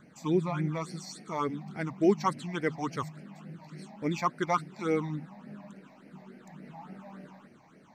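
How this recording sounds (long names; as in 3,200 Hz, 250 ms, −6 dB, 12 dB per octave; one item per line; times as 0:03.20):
phaser sweep stages 8, 3.5 Hz, lowest notch 390–1,100 Hz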